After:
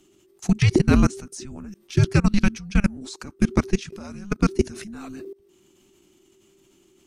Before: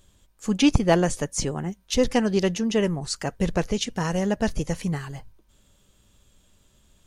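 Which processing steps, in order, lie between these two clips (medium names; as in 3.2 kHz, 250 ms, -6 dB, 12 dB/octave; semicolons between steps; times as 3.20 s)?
frequency shift -400 Hz; level held to a coarse grid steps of 22 dB; trim +7.5 dB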